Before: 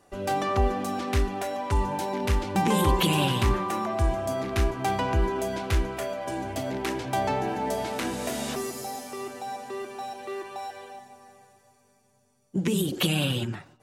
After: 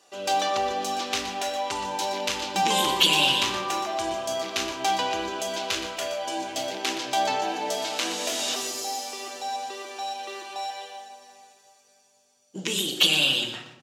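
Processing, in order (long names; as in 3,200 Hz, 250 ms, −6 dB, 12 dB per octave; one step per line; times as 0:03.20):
Bessel high-pass filter 470 Hz, order 2
flat-topped bell 4,400 Hz +9.5 dB
single-tap delay 121 ms −11 dB
rectangular room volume 300 cubic metres, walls mixed, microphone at 0.56 metres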